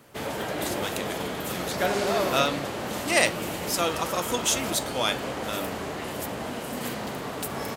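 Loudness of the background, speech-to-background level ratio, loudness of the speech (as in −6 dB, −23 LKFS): −30.5 LKFS, 2.0 dB, −28.5 LKFS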